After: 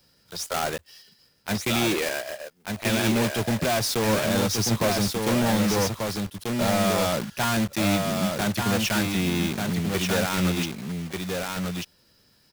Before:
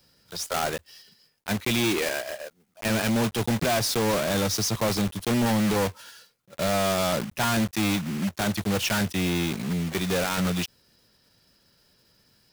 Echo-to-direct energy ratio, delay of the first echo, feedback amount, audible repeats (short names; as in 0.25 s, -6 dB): -4.0 dB, 1.188 s, no steady repeat, 1